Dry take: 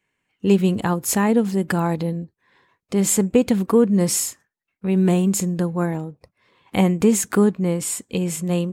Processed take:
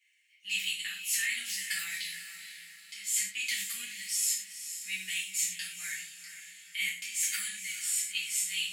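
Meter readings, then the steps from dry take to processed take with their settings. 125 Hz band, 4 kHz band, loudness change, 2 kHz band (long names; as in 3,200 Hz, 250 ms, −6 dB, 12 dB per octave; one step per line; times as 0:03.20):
below −40 dB, +2.0 dB, −11.5 dB, −0.5 dB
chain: elliptic high-pass filter 2,000 Hz, stop band 50 dB
reversed playback
downward compressor 6 to 1, threshold −37 dBFS, peak gain reduction 18 dB
reversed playback
feedback delay with all-pass diffusion 471 ms, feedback 42%, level −10 dB
reverb whose tail is shaped and stops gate 150 ms falling, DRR −7.5 dB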